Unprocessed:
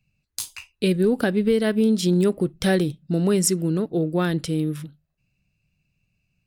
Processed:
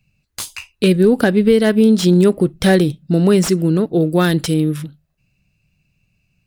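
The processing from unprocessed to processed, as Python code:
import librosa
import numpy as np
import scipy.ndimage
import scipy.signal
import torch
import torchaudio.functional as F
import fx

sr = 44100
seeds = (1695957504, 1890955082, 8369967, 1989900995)

y = fx.high_shelf(x, sr, hz=4000.0, db=9.0, at=(4.0, 4.54))
y = fx.slew_limit(y, sr, full_power_hz=250.0)
y = y * 10.0 ** (7.5 / 20.0)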